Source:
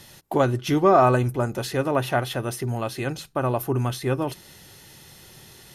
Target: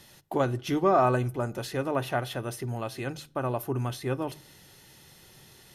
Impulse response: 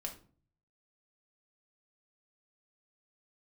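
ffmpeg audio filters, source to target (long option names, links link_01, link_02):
-filter_complex "[0:a]bandreject=frequency=50:width_type=h:width=6,bandreject=frequency=100:width_type=h:width=6,bandreject=frequency=150:width_type=h:width=6,asplit=2[link_01][link_02];[1:a]atrim=start_sample=2205,asetrate=29547,aresample=44100,lowpass=6200[link_03];[link_02][link_03]afir=irnorm=-1:irlink=0,volume=-18dB[link_04];[link_01][link_04]amix=inputs=2:normalize=0,volume=-6.5dB"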